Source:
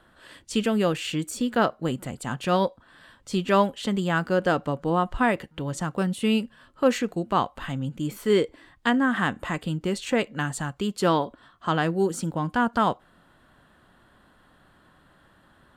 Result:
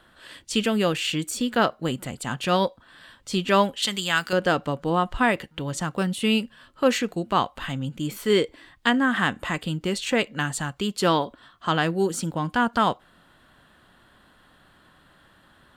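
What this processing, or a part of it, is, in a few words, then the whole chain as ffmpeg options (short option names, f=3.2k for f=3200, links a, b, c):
presence and air boost: -filter_complex "[0:a]equalizer=f=3.4k:t=o:w=2:g=5.5,highshelf=f=11k:g=6.5,asettb=1/sr,asplit=3[a][b][c];[a]atrim=end=3.824[d];[b]atrim=start=3.82:end=4.33,asetpts=PTS-STARTPTS,afade=t=in:d=0.004:c=qsin,afade=t=out:st=0.506:d=0.004:c=qsin,tiltshelf=f=1.3k:g=-9[e];[c]atrim=start=4.326[f];[d][e]acrossfade=d=0.004:c1=hsin:c2=qsin[g];[g][f]acrossfade=d=0.004:c1=qsin:c2=hsin"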